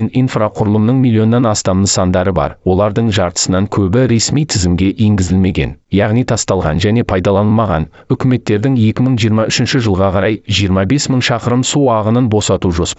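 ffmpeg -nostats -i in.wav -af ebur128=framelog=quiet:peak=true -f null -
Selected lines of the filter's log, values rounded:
Integrated loudness:
  I:         -12.8 LUFS
  Threshold: -22.8 LUFS
Loudness range:
  LRA:         0.7 LU
  Threshold: -32.9 LUFS
  LRA low:   -13.2 LUFS
  LRA high:  -12.5 LUFS
True peak:
  Peak:       -1.9 dBFS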